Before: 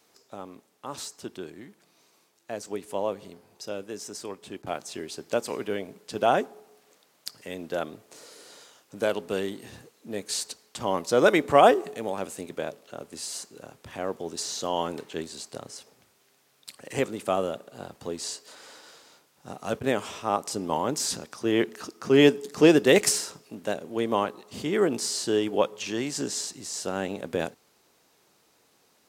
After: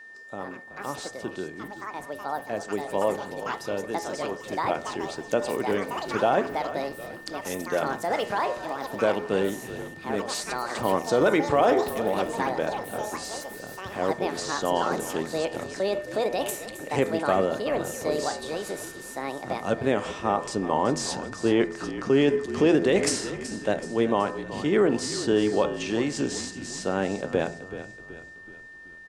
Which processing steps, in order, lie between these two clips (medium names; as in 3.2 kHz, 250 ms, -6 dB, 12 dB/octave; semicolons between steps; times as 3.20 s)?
low-pass 10 kHz 24 dB/octave; treble shelf 3.4 kHz -9.5 dB; de-hum 84.4 Hz, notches 29; peak limiter -16 dBFS, peak gain reduction 11 dB; frequency-shifting echo 377 ms, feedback 48%, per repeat -46 Hz, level -13 dB; ever faster or slower copies 174 ms, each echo +6 st, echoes 2, each echo -6 dB; whistle 1.8 kHz -48 dBFS; trim +4.5 dB